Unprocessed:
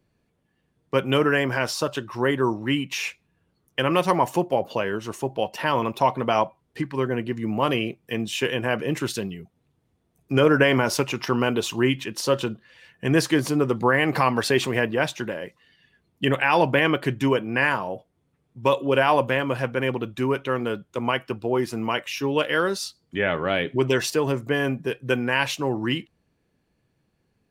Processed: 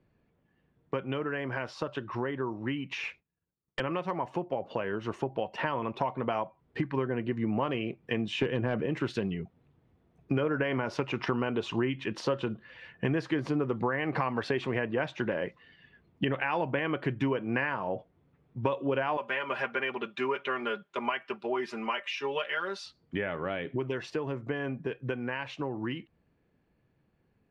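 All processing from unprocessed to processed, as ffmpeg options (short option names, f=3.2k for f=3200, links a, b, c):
-filter_complex "[0:a]asettb=1/sr,asplit=3[a][b][c];[a]atrim=end=3.024[d];[b]atrim=start=3.02:end=3.8,asetpts=PTS-STARTPTS,afade=t=in:d=0.004:c=qsin,afade=t=out:st=0.776:d=0.004:c=qsin,agate=range=-33dB:threshold=-56dB:ratio=3:release=100:detection=peak,aeval=exprs='0.0944*(abs(mod(val(0)/0.0944+3,4)-2)-1)':c=same[e];[c]atrim=start=3.796[f];[d][e]acrossfade=d=0.004:c1=hsin:c2=qsin[g];[g][f]acrossfade=d=0.004:c1=qsin:c2=hsin,asettb=1/sr,asplit=3[h][i][j];[h]atrim=end=8.384[k];[i]atrim=start=8.38:end=8.86,asetpts=PTS-STARTPTS,afade=t=in:d=0.004:c=qsin,afade=t=out:st=0.476:d=0.004:c=qsin,lowshelf=f=480:g=10.5,asoftclip=type=hard:threshold=-10dB[l];[j]atrim=start=8.856[m];[k][l]acrossfade=d=0.004:c1=hsin:c2=qsin[n];[n][m]acrossfade=d=0.004:c1=qsin:c2=hsin,asettb=1/sr,asplit=3[o][p][q];[o]atrim=end=19.174[r];[p]atrim=start=19.17:end=22.86,asetpts=PTS-STARTPTS,afade=t=in:d=0.004:c=qsin,afade=t=out:st=3.686:d=0.004:c=qsin,highpass=f=1.4k:p=1,aecho=1:1:5:0.92,atrim=end_sample=162729[s];[q]atrim=start=22.856[t];[r][s]acrossfade=d=0.004:c1=hsin:c2=qsin[u];[u][t]acrossfade=d=0.004:c1=qsin:c2=hsin,acompressor=threshold=-29dB:ratio=10,lowpass=2.6k,dynaudnorm=f=530:g=21:m=3.5dB"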